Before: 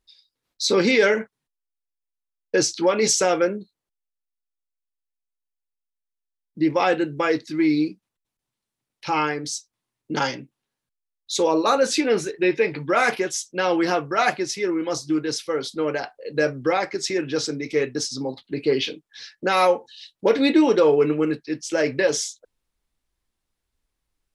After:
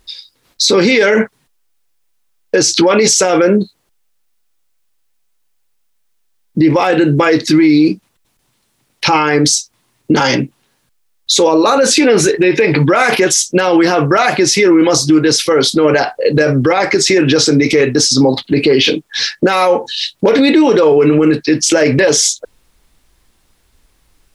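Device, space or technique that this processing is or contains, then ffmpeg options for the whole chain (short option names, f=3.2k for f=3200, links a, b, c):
loud club master: -af "acompressor=threshold=-22dB:ratio=3,asoftclip=type=hard:threshold=-14dB,alimiter=level_in=25dB:limit=-1dB:release=50:level=0:latency=1,volume=-1.5dB"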